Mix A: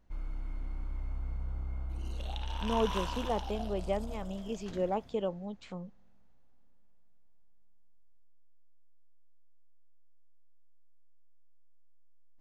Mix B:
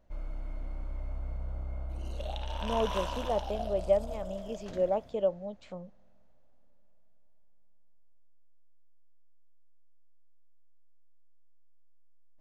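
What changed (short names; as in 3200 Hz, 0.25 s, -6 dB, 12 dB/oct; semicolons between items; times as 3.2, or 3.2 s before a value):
speech -3.5 dB; master: add bell 600 Hz +13 dB 0.39 oct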